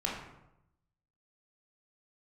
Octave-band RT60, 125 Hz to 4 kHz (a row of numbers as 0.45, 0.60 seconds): 1.1, 0.95, 0.90, 0.85, 0.70, 0.55 seconds